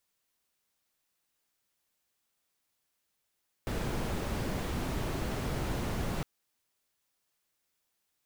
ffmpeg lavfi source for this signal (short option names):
-f lavfi -i "anoisesrc=c=brown:a=0.105:d=2.56:r=44100:seed=1"